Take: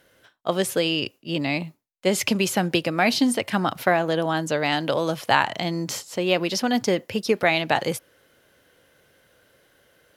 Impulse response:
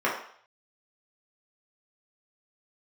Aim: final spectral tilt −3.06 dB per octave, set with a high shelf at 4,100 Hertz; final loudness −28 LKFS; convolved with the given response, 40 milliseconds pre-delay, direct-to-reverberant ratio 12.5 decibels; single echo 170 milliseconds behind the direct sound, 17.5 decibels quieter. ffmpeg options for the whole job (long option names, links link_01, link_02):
-filter_complex "[0:a]highshelf=frequency=4100:gain=8,aecho=1:1:170:0.133,asplit=2[link_01][link_02];[1:a]atrim=start_sample=2205,adelay=40[link_03];[link_02][link_03]afir=irnorm=-1:irlink=0,volume=-27dB[link_04];[link_01][link_04]amix=inputs=2:normalize=0,volume=-6dB"